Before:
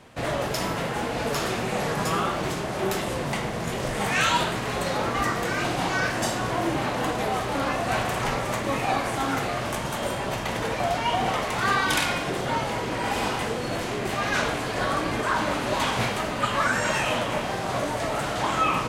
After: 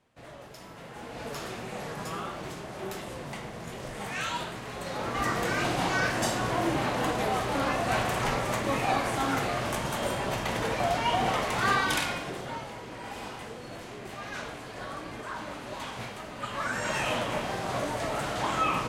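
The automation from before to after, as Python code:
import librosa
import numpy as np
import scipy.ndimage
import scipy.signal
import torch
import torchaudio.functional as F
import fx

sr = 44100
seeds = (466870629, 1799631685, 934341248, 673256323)

y = fx.gain(x, sr, db=fx.line((0.66, -19.5), (1.24, -10.5), (4.77, -10.5), (5.37, -2.0), (11.72, -2.0), (12.75, -13.0), (16.26, -13.0), (17.06, -4.0)))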